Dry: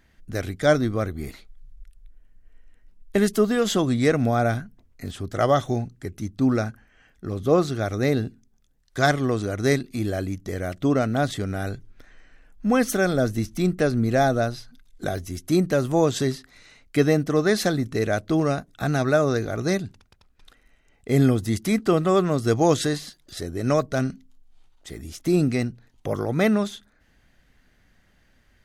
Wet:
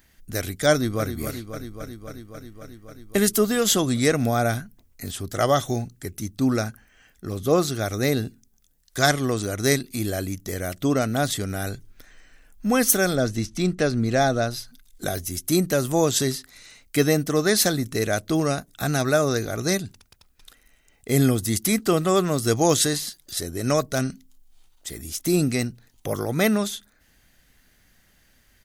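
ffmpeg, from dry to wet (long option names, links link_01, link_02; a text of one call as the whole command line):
ffmpeg -i in.wav -filter_complex "[0:a]asplit=2[link_01][link_02];[link_02]afade=type=in:start_time=0.72:duration=0.01,afade=type=out:start_time=1.12:duration=0.01,aecho=0:1:270|540|810|1080|1350|1620|1890|2160|2430|2700|2970|3240:0.354813|0.283851|0.227081|0.181664|0.145332|0.116265|0.0930122|0.0744098|0.0595278|0.0476222|0.0380978|0.0304782[link_03];[link_01][link_03]amix=inputs=2:normalize=0,asettb=1/sr,asplit=3[link_04][link_05][link_06];[link_04]atrim=end=13.154[link_07];[link_05]atrim=start=13.15:end=14.51,asetpts=PTS-STARTPTS,afade=type=in:duration=0.004:curve=qsin,afade=type=out:start_time=1.356:duration=0.004:curve=qsin,lowpass=6000[link_08];[link_06]atrim=start=14.506[link_09];[link_07][link_08]acrossfade=duration=0.004:curve1=hsin:curve2=qsin[link_10];[link_10][link_09]acrossfade=duration=0.004:curve1=qsin:curve2=hsin,aemphasis=mode=production:type=75kf,volume=-1dB" out.wav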